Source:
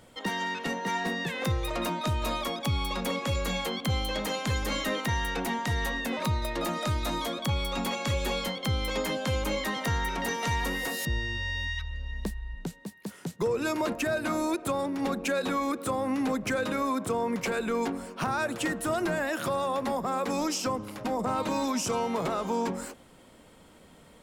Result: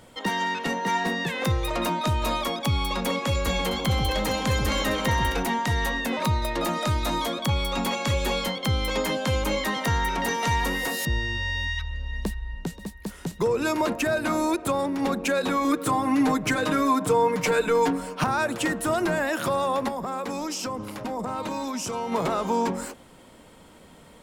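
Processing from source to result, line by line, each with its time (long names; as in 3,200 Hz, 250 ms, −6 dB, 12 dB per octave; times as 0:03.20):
0:03.33–0:05.43: delay that swaps between a low-pass and a high-pass 132 ms, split 1,000 Hz, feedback 57%, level −4.5 dB
0:11.60–0:12.63: delay throw 530 ms, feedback 65%, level −16.5 dB
0:15.64–0:18.24: comb filter 6.6 ms, depth 87%
0:19.88–0:22.12: downward compressor, threshold −31 dBFS
whole clip: parametric band 940 Hz +2.5 dB 0.23 octaves; level +4 dB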